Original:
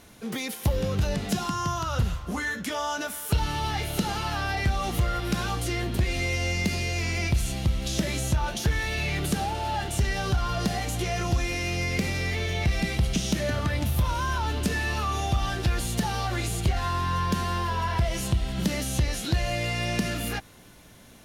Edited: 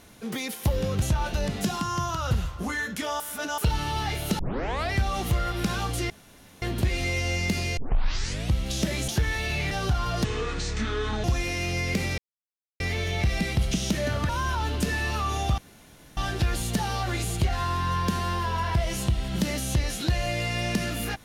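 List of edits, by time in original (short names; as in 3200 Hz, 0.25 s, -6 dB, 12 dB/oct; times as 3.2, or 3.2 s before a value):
2.88–3.26 reverse
4.07 tape start 0.53 s
5.78 insert room tone 0.52 s
6.93 tape start 0.76 s
8.24–8.56 move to 1.02
9.19–10.14 cut
10.67–11.28 speed 61%
12.22 insert silence 0.62 s
13.71–14.12 cut
15.41 insert room tone 0.59 s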